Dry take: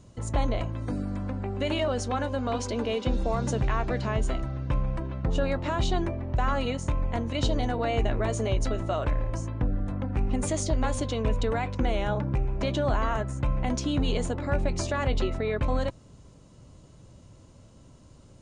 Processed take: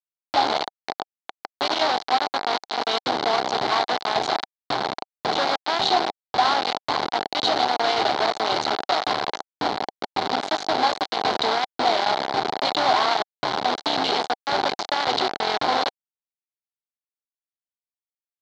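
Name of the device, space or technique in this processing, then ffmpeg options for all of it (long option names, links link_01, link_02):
hand-held game console: -af "bandreject=frequency=5300:width=24,acrusher=bits=3:mix=0:aa=0.000001,highpass=460,equalizer=frequency=530:width_type=q:width=4:gain=-7,equalizer=frequency=770:width_type=q:width=4:gain=8,equalizer=frequency=1200:width_type=q:width=4:gain=-3,equalizer=frequency=1800:width_type=q:width=4:gain=-5,equalizer=frequency=2600:width_type=q:width=4:gain=-9,equalizer=frequency=4200:width_type=q:width=4:gain=7,lowpass=frequency=4500:width=0.5412,lowpass=frequency=4500:width=1.3066,volume=6.5dB"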